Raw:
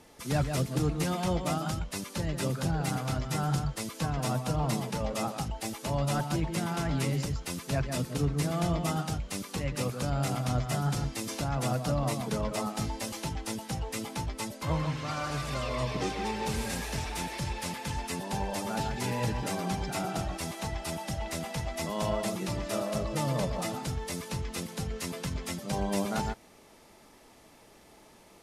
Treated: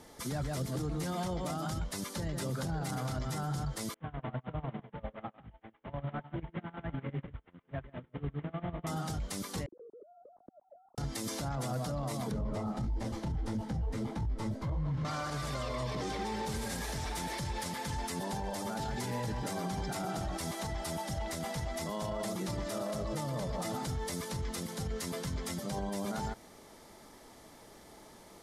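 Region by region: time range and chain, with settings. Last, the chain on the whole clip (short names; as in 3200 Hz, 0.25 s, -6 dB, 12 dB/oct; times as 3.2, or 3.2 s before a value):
3.94–8.87 CVSD 16 kbps + chopper 10 Hz, depth 60%, duty 55% + upward expander 2.5:1, over -45 dBFS
9.66–10.98 sine-wave speech + ladder low-pass 320 Hz, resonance 25% + compressor, threshold -51 dBFS
12.31–15.05 RIAA curve playback + detuned doubles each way 55 cents
whole clip: bell 2600 Hz -9 dB 0.25 oct; limiter -30 dBFS; gain +2 dB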